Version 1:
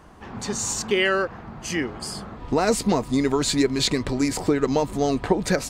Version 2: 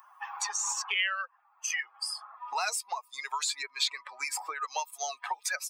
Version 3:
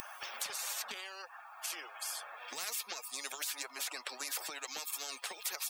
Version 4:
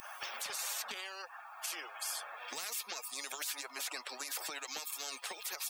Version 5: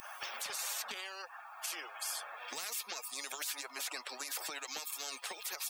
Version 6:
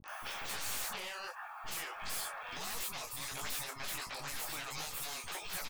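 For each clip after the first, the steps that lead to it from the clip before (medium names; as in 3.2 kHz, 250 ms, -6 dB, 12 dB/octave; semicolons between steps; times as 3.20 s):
expander on every frequency bin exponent 2; steep high-pass 800 Hz 36 dB/octave; three bands compressed up and down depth 100%
comb of notches 1 kHz; spectrum-flattening compressor 10:1; trim -2 dB
peak limiter -29.5 dBFS, peak gain reduction 10.5 dB; trim +1.5 dB
no audible change
one-sided wavefolder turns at -41 dBFS; three bands offset in time lows, mids, highs 40/80 ms, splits 330/6000 Hz; detune thickener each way 50 cents; trim +7 dB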